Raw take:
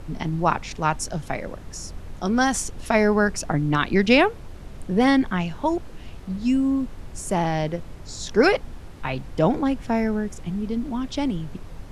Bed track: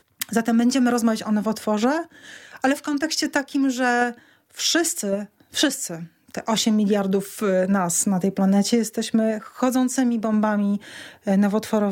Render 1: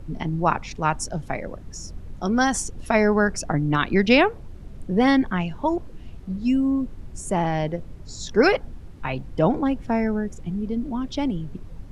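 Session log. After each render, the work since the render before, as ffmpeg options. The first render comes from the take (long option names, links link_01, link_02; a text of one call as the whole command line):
ffmpeg -i in.wav -af "afftdn=noise_reduction=9:noise_floor=-39" out.wav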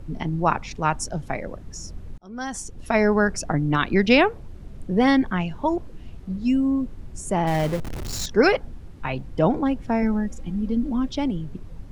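ffmpeg -i in.wav -filter_complex "[0:a]asettb=1/sr,asplit=3[link_01][link_02][link_03];[link_01]atrim=end=7.474[link_04];[link_02]atrim=start=7.47:end=8.26,asetpts=PTS-STARTPTS,afade=type=in:duration=0.004:curve=qsin,afade=type=out:start_time=0.786:duration=0.004:curve=qsin,aeval=exprs='val(0)+0.5*0.0447*sgn(val(0))':channel_layout=same[link_05];[link_03]atrim=start=8.256[link_06];[link_04][link_05]acrossfade=duration=0.004:curve1=hsin:curve2=qsin[link_07];[link_07][link_06]acrossfade=duration=0.004:curve1=qsin:curve2=hsin,asettb=1/sr,asplit=3[link_08][link_09][link_10];[link_08]atrim=end=10.024[link_11];[link_09]atrim=start=10.02:end=11.09,asetpts=PTS-STARTPTS,afade=type=in:duration=0.004:curve=qsin,afade=type=out:start_time=1.066:duration=0.004:curve=qsin,aecho=1:1:3.7:0.65,atrim=end_sample=47187[link_12];[link_10]atrim=start=11.086[link_13];[link_11][link_12]acrossfade=duration=0.004:curve1=hsin:curve2=qsin[link_14];[link_14][link_13]acrossfade=duration=0.004:curve1=qsin:curve2=hsin,asplit=2[link_15][link_16];[link_15]atrim=end=2.18,asetpts=PTS-STARTPTS,afade=type=out:start_time=2.176:duration=0.004:curve=hsin[link_17];[link_16]atrim=start=2.18,asetpts=PTS-STARTPTS,afade=type=in:duration=0.87[link_18];[link_17][link_18]concat=n=2:v=0:a=1" out.wav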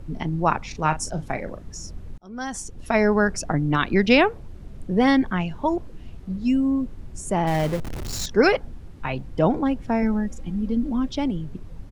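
ffmpeg -i in.wav -filter_complex "[0:a]asplit=3[link_01][link_02][link_03];[link_01]afade=type=out:start_time=0.71:duration=0.02[link_04];[link_02]asplit=2[link_05][link_06];[link_06]adelay=38,volume=-10.5dB[link_07];[link_05][link_07]amix=inputs=2:normalize=0,afade=type=in:start_time=0.71:duration=0.02,afade=type=out:start_time=1.71:duration=0.02[link_08];[link_03]afade=type=in:start_time=1.71:duration=0.02[link_09];[link_04][link_08][link_09]amix=inputs=3:normalize=0" out.wav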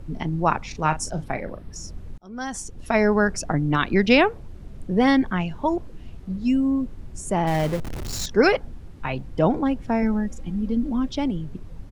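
ffmpeg -i in.wav -filter_complex "[0:a]asettb=1/sr,asplit=3[link_01][link_02][link_03];[link_01]atrim=end=1.244[link_04];[link_02]atrim=start=1.24:end=1.76,asetpts=PTS-STARTPTS,afade=type=in:duration=0.004:curve=qsin,afade=type=out:start_time=0.516:duration=0.004:curve=qsin,equalizer=frequency=6800:width=3.2:gain=-12[link_05];[link_03]atrim=start=1.756[link_06];[link_04][link_05]acrossfade=duration=0.004:curve1=hsin:curve2=qsin[link_07];[link_07][link_06]acrossfade=duration=0.004:curve1=qsin:curve2=hsin" out.wav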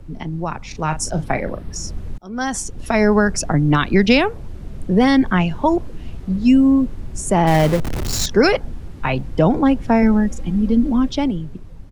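ffmpeg -i in.wav -filter_complex "[0:a]acrossover=split=190|4200[link_01][link_02][link_03];[link_02]alimiter=limit=-14.5dB:level=0:latency=1:release=207[link_04];[link_01][link_04][link_03]amix=inputs=3:normalize=0,dynaudnorm=framelen=210:gausssize=9:maxgain=9.5dB" out.wav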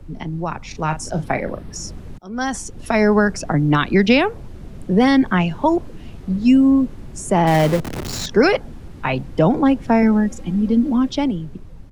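ffmpeg -i in.wav -filter_complex "[0:a]acrossover=split=110|3800[link_01][link_02][link_03];[link_01]acompressor=threshold=-32dB:ratio=6[link_04];[link_03]alimiter=limit=-22.5dB:level=0:latency=1:release=76[link_05];[link_04][link_02][link_05]amix=inputs=3:normalize=0" out.wav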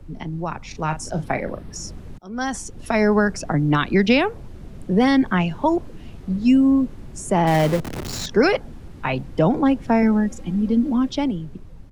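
ffmpeg -i in.wav -af "volume=-2.5dB" out.wav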